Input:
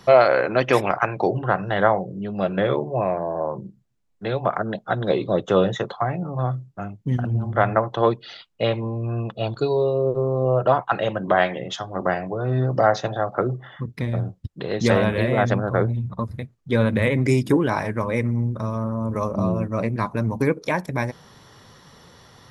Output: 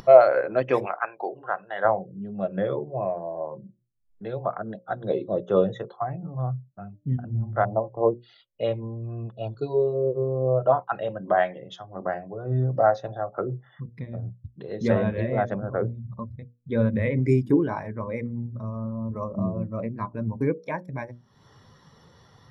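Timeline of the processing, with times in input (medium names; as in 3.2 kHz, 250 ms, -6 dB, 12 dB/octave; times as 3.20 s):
0.86–1.85 s: frequency weighting A
7.65–8.21 s: steep low-pass 990 Hz
whole clip: hum notches 60/120/180/240/300/360/420/480/540/600 Hz; upward compressor, threshold -27 dBFS; spectral contrast expander 1.5:1; trim +1 dB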